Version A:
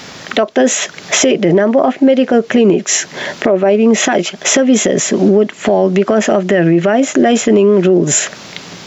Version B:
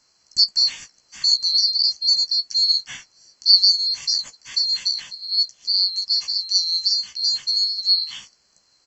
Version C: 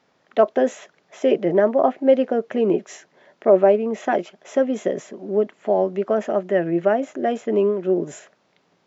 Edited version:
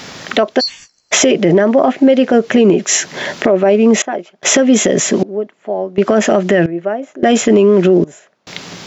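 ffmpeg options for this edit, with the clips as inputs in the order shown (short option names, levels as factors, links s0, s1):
-filter_complex "[2:a]asplit=4[s0][s1][s2][s3];[0:a]asplit=6[s4][s5][s6][s7][s8][s9];[s4]atrim=end=0.61[s10];[1:a]atrim=start=0.59:end=1.13[s11];[s5]atrim=start=1.11:end=4.022[s12];[s0]atrim=start=4.018:end=4.432[s13];[s6]atrim=start=4.428:end=5.232[s14];[s1]atrim=start=5.228:end=5.982[s15];[s7]atrim=start=5.978:end=6.662[s16];[s2]atrim=start=6.658:end=7.232[s17];[s8]atrim=start=7.228:end=8.042[s18];[s3]atrim=start=8.038:end=8.472[s19];[s9]atrim=start=8.468[s20];[s10][s11]acrossfade=d=0.02:c1=tri:c2=tri[s21];[s21][s12]acrossfade=d=0.02:c1=tri:c2=tri[s22];[s22][s13]acrossfade=d=0.004:c1=hsin:c2=hsin[s23];[s23][s14]acrossfade=d=0.004:c1=hsin:c2=hsin[s24];[s24][s15]acrossfade=d=0.004:c1=hsin:c2=hsin[s25];[s25][s16]acrossfade=d=0.004:c1=hsin:c2=hsin[s26];[s26][s17]acrossfade=d=0.004:c1=hsin:c2=hsin[s27];[s27][s18]acrossfade=d=0.004:c1=hsin:c2=hsin[s28];[s28][s19]acrossfade=d=0.004:c1=hsin:c2=hsin[s29];[s29][s20]acrossfade=d=0.004:c1=hsin:c2=hsin"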